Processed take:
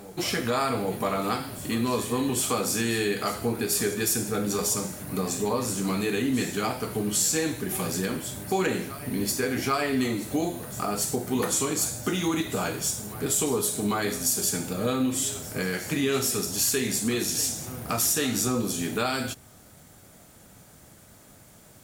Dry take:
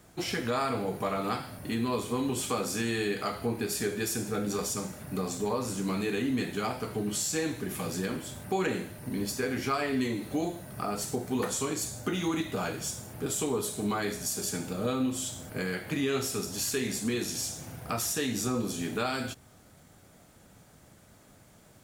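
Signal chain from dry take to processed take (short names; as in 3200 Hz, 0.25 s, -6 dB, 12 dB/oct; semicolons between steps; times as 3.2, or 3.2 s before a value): high shelf 7000 Hz +7.5 dB; reverse echo 0.795 s -16 dB; gain +3.5 dB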